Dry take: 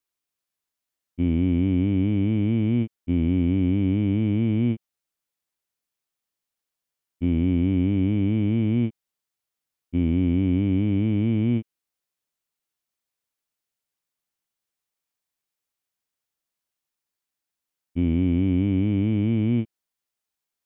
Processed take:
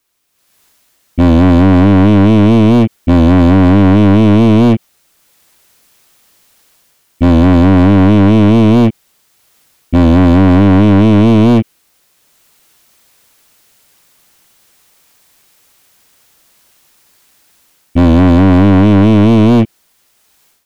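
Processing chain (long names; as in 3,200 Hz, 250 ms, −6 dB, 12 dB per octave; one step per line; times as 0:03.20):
automatic gain control gain up to 16.5 dB
hard clipping −15 dBFS, distortion −6 dB
boost into a limiter +22 dB
level −4 dB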